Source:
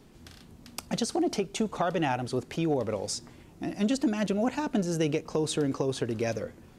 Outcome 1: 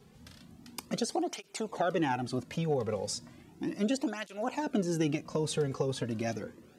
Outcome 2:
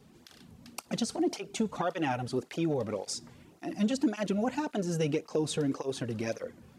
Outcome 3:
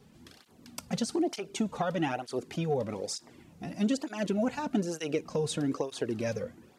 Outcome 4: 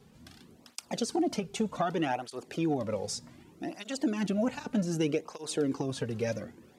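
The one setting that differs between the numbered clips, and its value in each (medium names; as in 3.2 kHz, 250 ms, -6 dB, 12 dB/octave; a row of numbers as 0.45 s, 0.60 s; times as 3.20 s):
cancelling through-zero flanger, nulls at: 0.35 Hz, 1.8 Hz, 1.1 Hz, 0.65 Hz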